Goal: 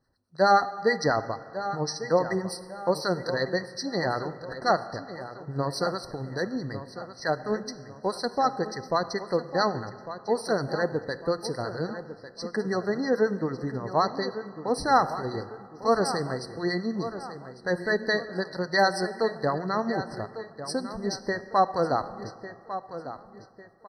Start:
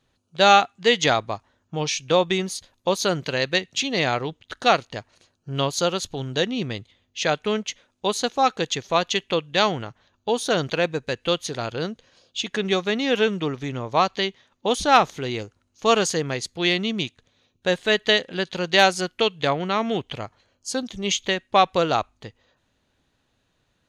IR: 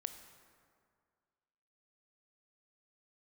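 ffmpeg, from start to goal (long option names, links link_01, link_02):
-filter_complex "[0:a]asettb=1/sr,asplit=3[link_01][link_02][link_03];[link_01]atrim=end=6.194[link_04];[link_02]atrim=start=6.19:end=8.37,asetpts=PTS-STARTPTS,afade=type=in:duration=0.004:curve=qsin,afade=type=out:start_time=2.176:duration=0.004:curve=qsin,aeval=exprs='0.501*(cos(1*acos(clip(val(0)/0.501,-1,1)))-cos(1*PI/2))+0.00891*(cos(7*acos(clip(val(0)/0.501,-1,1)))-cos(7*PI/2))':channel_layout=same[link_05];[link_03]atrim=start=8.366[link_06];[link_04][link_05]acrossfade=duration=0.004:curve1=hsin:curve2=qsin[link_07];[link_07][link_06]acrossfade=duration=0.004:curve1=qsin:curve2=hsin,acrossover=split=940[link_08][link_09];[link_08]aeval=exprs='val(0)*(1-0.7/2+0.7/2*cos(2*PI*9.3*n/s))':channel_layout=same[link_10];[link_09]aeval=exprs='val(0)*(1-0.7/2-0.7/2*cos(2*PI*9.3*n/s))':channel_layout=same[link_11];[link_10][link_11]amix=inputs=2:normalize=0,asplit=2[link_12][link_13];[link_13]adelay=1150,lowpass=frequency=4300:poles=1,volume=-12dB,asplit=2[link_14][link_15];[link_15]adelay=1150,lowpass=frequency=4300:poles=1,volume=0.4,asplit=2[link_16][link_17];[link_17]adelay=1150,lowpass=frequency=4300:poles=1,volume=0.4,asplit=2[link_18][link_19];[link_19]adelay=1150,lowpass=frequency=4300:poles=1,volume=0.4[link_20];[link_12][link_14][link_16][link_18][link_20]amix=inputs=5:normalize=0,asplit=2[link_21][link_22];[1:a]atrim=start_sample=2205[link_23];[link_22][link_23]afir=irnorm=-1:irlink=0,volume=4dB[link_24];[link_21][link_24]amix=inputs=2:normalize=0,afftfilt=real='re*eq(mod(floor(b*sr/1024/2000),2),0)':imag='im*eq(mod(floor(b*sr/1024/2000),2),0)':win_size=1024:overlap=0.75,volume=-7.5dB"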